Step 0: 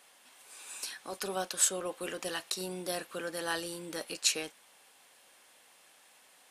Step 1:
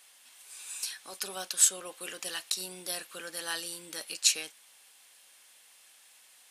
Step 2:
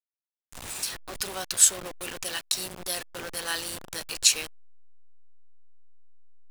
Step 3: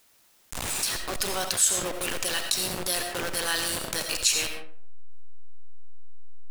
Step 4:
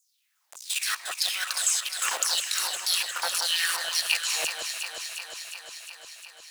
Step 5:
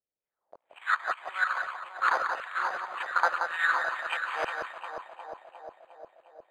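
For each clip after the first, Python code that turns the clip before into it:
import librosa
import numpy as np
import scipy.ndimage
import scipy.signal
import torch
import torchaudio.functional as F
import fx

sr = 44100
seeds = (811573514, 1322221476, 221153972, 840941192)

y1 = fx.tilt_shelf(x, sr, db=-7.0, hz=1500.0)
y1 = y1 * 10.0 ** (-2.0 / 20.0)
y2 = fx.delta_hold(y1, sr, step_db=-36.5)
y2 = y2 * 10.0 ** (4.5 / 20.0)
y3 = fx.rev_freeverb(y2, sr, rt60_s=0.64, hf_ratio=0.55, predelay_ms=45, drr_db=8.5)
y3 = fx.env_flatten(y3, sr, amount_pct=50)
y3 = y3 * 10.0 ** (-5.0 / 20.0)
y4 = fx.level_steps(y3, sr, step_db=15)
y4 = fx.filter_lfo_highpass(y4, sr, shape='saw_down', hz=1.8, low_hz=600.0, high_hz=7300.0, q=4.3)
y4 = fx.echo_alternate(y4, sr, ms=178, hz=1900.0, feedback_pct=84, wet_db=-5.5)
y5 = fx.air_absorb(y4, sr, metres=410.0)
y5 = (np.kron(scipy.signal.resample_poly(y5, 1, 8), np.eye(8)[0]) * 8)[:len(y5)]
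y5 = fx.envelope_lowpass(y5, sr, base_hz=540.0, top_hz=1400.0, q=2.4, full_db=-27.5, direction='up')
y5 = y5 * 10.0 ** (4.5 / 20.0)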